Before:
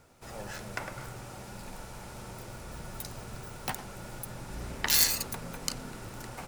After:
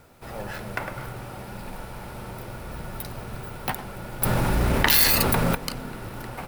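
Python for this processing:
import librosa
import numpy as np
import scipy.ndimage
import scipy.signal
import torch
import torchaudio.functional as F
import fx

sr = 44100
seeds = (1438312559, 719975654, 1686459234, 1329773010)

y = fx.peak_eq(x, sr, hz=6800.0, db=-14.0, octaves=0.89)
y = fx.quant_companded(y, sr, bits=6)
y = fx.env_flatten(y, sr, amount_pct=70, at=(4.22, 5.55))
y = y * librosa.db_to_amplitude(7.0)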